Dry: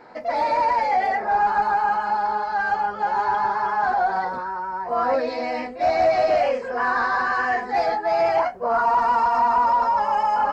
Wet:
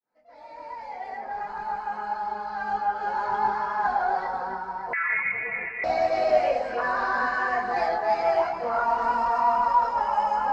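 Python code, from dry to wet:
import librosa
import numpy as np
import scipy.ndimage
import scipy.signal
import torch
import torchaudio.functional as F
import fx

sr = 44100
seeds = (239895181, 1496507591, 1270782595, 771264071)

y = fx.fade_in_head(x, sr, length_s=3.47)
y = fx.echo_alternate(y, sr, ms=139, hz=1100.0, feedback_pct=70, wet_db=-5.0)
y = fx.chorus_voices(y, sr, voices=6, hz=0.27, base_ms=22, depth_ms=4.1, mix_pct=50)
y = fx.freq_invert(y, sr, carrier_hz=2700, at=(4.93, 5.84))
y = y * librosa.db_to_amplitude(-2.0)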